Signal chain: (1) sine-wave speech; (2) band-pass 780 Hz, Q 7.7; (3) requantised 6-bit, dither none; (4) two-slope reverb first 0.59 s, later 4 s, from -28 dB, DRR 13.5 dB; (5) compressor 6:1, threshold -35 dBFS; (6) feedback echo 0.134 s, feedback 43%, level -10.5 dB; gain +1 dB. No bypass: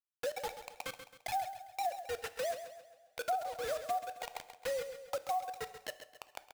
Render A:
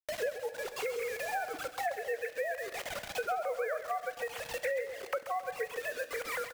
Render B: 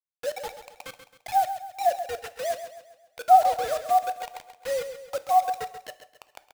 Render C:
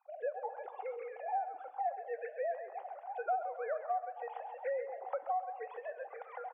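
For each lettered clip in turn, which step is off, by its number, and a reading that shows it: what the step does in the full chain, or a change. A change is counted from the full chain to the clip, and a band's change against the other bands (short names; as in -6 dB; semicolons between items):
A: 2, crest factor change -2.0 dB; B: 5, mean gain reduction 8.5 dB; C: 3, distortion -14 dB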